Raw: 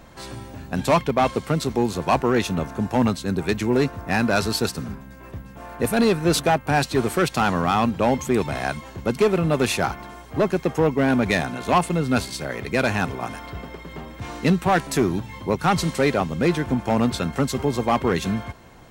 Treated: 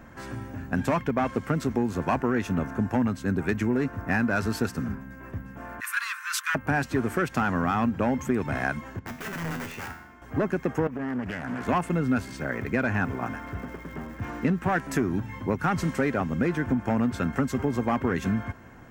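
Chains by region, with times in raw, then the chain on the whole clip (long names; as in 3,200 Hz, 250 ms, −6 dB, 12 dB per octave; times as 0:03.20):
0:05.80–0:06.55: Butterworth high-pass 1,000 Hz 96 dB per octave + tilt shelving filter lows −4.5 dB, about 1,400 Hz
0:08.99–0:10.22: low-pass filter 5,400 Hz + wrap-around overflow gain 17 dB + tuned comb filter 82 Hz, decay 0.66 s, mix 80%
0:10.87–0:11.67: notch filter 2,900 Hz + downward compressor 20 to 1, threshold −27 dBFS + highs frequency-modulated by the lows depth 0.42 ms
0:12.31–0:14.62: low-pass filter 11,000 Hz + high-shelf EQ 3,900 Hz −6 dB + surface crackle 520 per second −38 dBFS
whole clip: graphic EQ with 15 bands 100 Hz +6 dB, 250 Hz +7 dB, 1,600 Hz +8 dB, 4,000 Hz −10 dB, 10,000 Hz −7 dB; downward compressor, threshold −17 dBFS; level −4 dB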